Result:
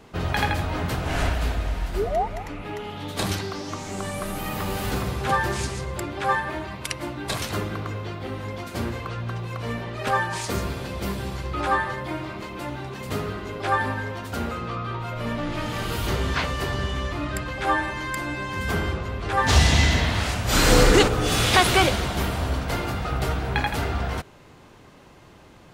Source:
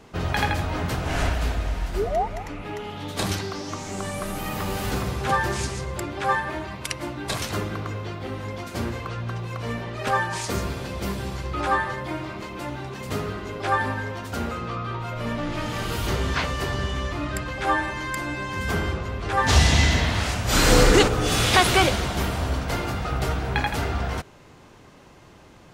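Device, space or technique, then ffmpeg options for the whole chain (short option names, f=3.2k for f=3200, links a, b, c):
exciter from parts: -filter_complex "[0:a]asplit=2[a][b];[b]highpass=3.4k,asoftclip=type=tanh:threshold=-29.5dB,highpass=f=4.6k:w=0.5412,highpass=f=4.6k:w=1.3066,volume=-12.5dB[c];[a][c]amix=inputs=2:normalize=0"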